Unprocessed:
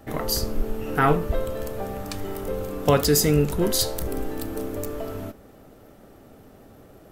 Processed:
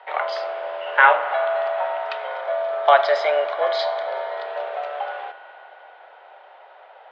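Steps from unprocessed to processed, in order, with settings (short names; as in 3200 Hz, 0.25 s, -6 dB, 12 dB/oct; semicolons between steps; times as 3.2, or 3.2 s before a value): mistuned SSB +140 Hz 500–3400 Hz; 2.27–4.46 notch 2700 Hz, Q 5; spring tank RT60 3.8 s, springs 39 ms, chirp 60 ms, DRR 10.5 dB; gain +8 dB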